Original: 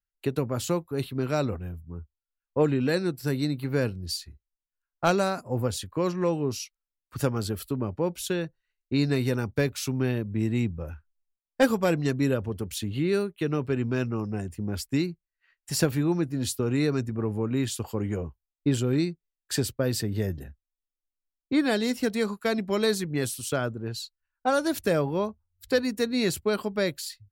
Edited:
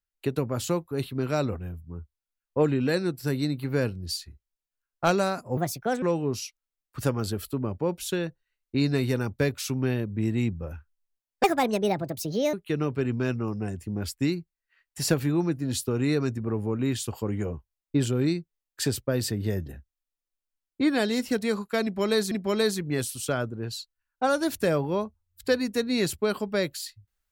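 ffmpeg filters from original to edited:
ffmpeg -i in.wav -filter_complex "[0:a]asplit=6[link_01][link_02][link_03][link_04][link_05][link_06];[link_01]atrim=end=5.574[link_07];[link_02]atrim=start=5.57:end=6.2,asetpts=PTS-STARTPTS,asetrate=61299,aresample=44100[link_08];[link_03]atrim=start=6.196:end=11.614[link_09];[link_04]atrim=start=11.61:end=13.25,asetpts=PTS-STARTPTS,asetrate=65709,aresample=44100[link_10];[link_05]atrim=start=13.246:end=23.032[link_11];[link_06]atrim=start=22.548[link_12];[link_07][link_08]acrossfade=duration=0.004:curve1=hsin:curve2=hsin[link_13];[link_13][link_09]acrossfade=duration=0.004:curve1=hsin:curve2=hsin[link_14];[link_14][link_10]acrossfade=duration=0.004:curve1=hsin:curve2=hsin[link_15];[link_15][link_11]acrossfade=duration=0.004:curve1=hsin:curve2=hsin[link_16];[link_16][link_12]acrossfade=duration=0.004:curve1=hsin:curve2=hsin" out.wav

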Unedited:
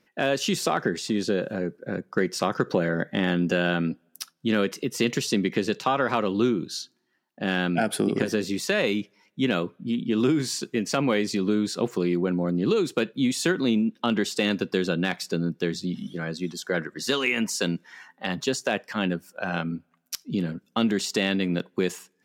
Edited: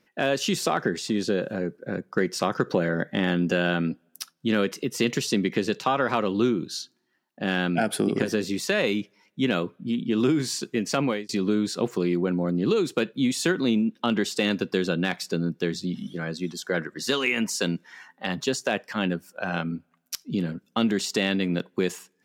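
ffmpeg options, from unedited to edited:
ffmpeg -i in.wav -filter_complex "[0:a]asplit=2[link_01][link_02];[link_01]atrim=end=11.29,asetpts=PTS-STARTPTS,afade=type=out:start_time=11.04:duration=0.25[link_03];[link_02]atrim=start=11.29,asetpts=PTS-STARTPTS,afade=type=in:duration=0.004:curve=hsin[link_04];[link_03][link_04]concat=n=2:v=0:a=1" out.wav

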